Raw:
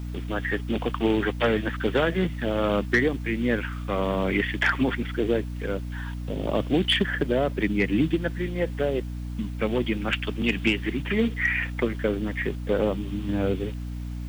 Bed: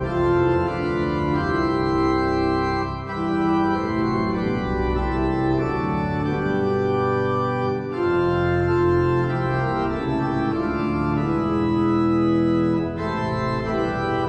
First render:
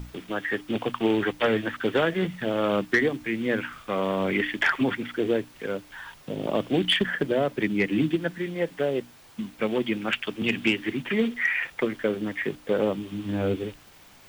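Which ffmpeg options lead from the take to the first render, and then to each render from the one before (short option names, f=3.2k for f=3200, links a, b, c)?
-af "bandreject=f=60:t=h:w=6,bandreject=f=120:t=h:w=6,bandreject=f=180:t=h:w=6,bandreject=f=240:t=h:w=6,bandreject=f=300:t=h:w=6"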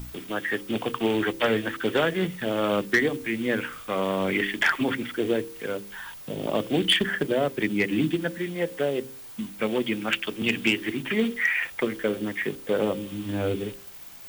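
-af "highshelf=f=6.5k:g=11.5,bandreject=f=66.33:t=h:w=4,bandreject=f=132.66:t=h:w=4,bandreject=f=198.99:t=h:w=4,bandreject=f=265.32:t=h:w=4,bandreject=f=331.65:t=h:w=4,bandreject=f=397.98:t=h:w=4,bandreject=f=464.31:t=h:w=4,bandreject=f=530.64:t=h:w=4"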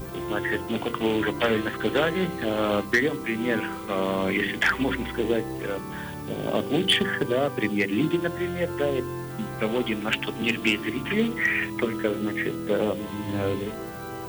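-filter_complex "[1:a]volume=-13.5dB[a];[0:a][a]amix=inputs=2:normalize=0"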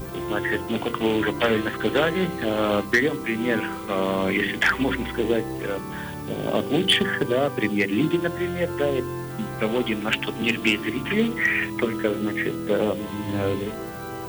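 -af "volume=2dB"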